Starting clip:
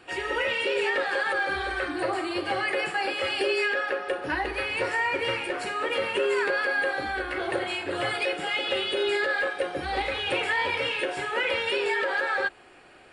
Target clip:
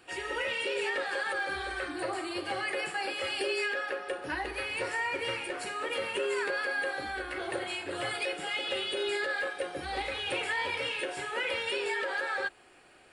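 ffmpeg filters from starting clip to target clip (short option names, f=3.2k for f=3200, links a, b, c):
-af "highshelf=f=6.5k:g=11,volume=-6.5dB"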